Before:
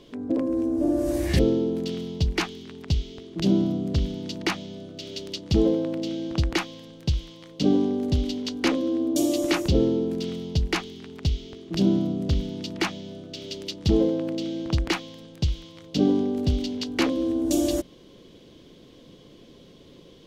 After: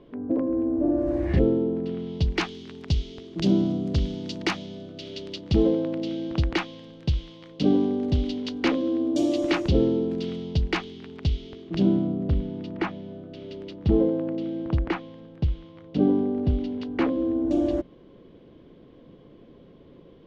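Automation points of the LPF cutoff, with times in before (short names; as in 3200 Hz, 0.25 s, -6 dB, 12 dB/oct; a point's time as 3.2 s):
1.96 s 1600 Hz
2.17 s 3700 Hz
2.61 s 6400 Hz
4.49 s 6400 Hz
5.13 s 3800 Hz
11.6 s 3800 Hz
12.16 s 1700 Hz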